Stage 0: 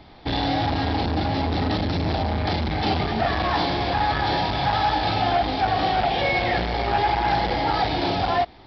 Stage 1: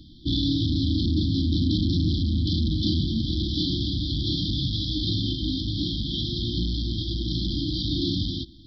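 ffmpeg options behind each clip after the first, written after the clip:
-af "afftfilt=real='re*(1-between(b*sr/4096,350,3100))':imag='im*(1-between(b*sr/4096,350,3100))':win_size=4096:overlap=0.75,volume=2dB"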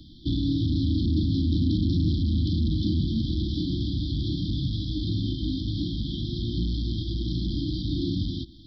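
-filter_complex "[0:a]acrossover=split=430[a][b];[b]acompressor=threshold=-39dB:ratio=5[c];[a][c]amix=inputs=2:normalize=0"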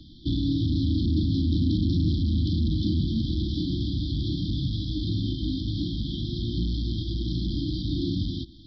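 -ar 16000 -c:a wmav2 -b:a 128k

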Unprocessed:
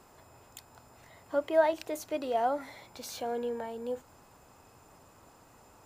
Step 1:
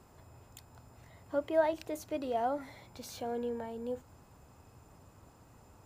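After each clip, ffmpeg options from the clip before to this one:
-af "equalizer=f=77:w=0.36:g=11.5,volume=-5dB"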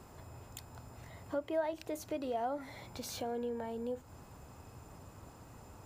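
-af "acompressor=threshold=-45dB:ratio=2,volume=5dB"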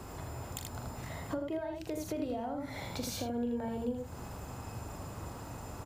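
-filter_complex "[0:a]aecho=1:1:41|80:0.422|0.631,acrossover=split=250[a][b];[b]acompressor=threshold=-45dB:ratio=10[c];[a][c]amix=inputs=2:normalize=0,volume=8dB"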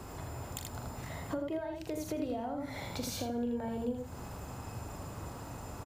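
-af "aecho=1:1:87|174|261:0.112|0.0381|0.013"

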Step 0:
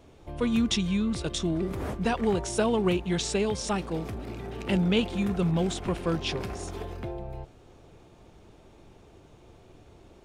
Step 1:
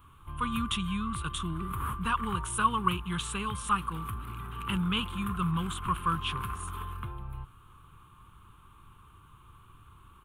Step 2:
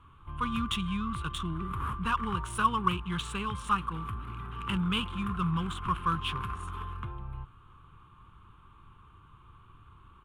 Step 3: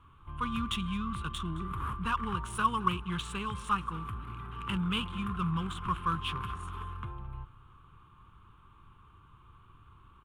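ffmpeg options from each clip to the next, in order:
-af "firequalizer=gain_entry='entry(120,0);entry(240,-10);entry(650,-25);entry(1100,14);entry(1900,-7);entry(3000,2);entry(5100,-21);entry(10000,9)':delay=0.05:min_phase=1"
-af "adynamicsmooth=sensitivity=8:basefreq=4.8k"
-af "aecho=1:1:217|434:0.112|0.0303,volume=-2dB"

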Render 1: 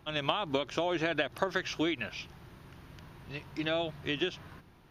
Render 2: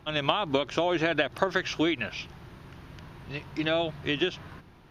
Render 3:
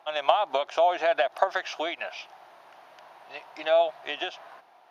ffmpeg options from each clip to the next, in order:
-af "highshelf=f=9.9k:g=-9,volume=5dB"
-af "aeval=exprs='0.447*(cos(1*acos(clip(val(0)/0.447,-1,1)))-cos(1*PI/2))+0.0141*(cos(4*acos(clip(val(0)/0.447,-1,1)))-cos(4*PI/2))':c=same,highpass=f=710:t=q:w=4.9,volume=-3.5dB"

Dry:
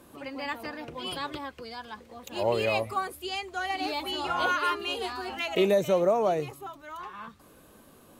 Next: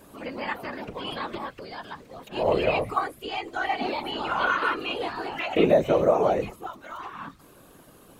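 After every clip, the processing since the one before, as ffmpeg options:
-filter_complex "[0:a]acrossover=split=3400[a][b];[b]acompressor=threshold=-55dB:ratio=4:attack=1:release=60[c];[a][c]amix=inputs=2:normalize=0,afftfilt=real='hypot(re,im)*cos(2*PI*random(0))':imag='hypot(re,im)*sin(2*PI*random(1))':win_size=512:overlap=0.75,volume=9dB"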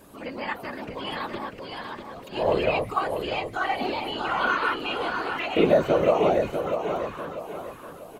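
-af "aecho=1:1:644|1288|1932|2576|3220:0.447|0.174|0.0679|0.0265|0.0103"

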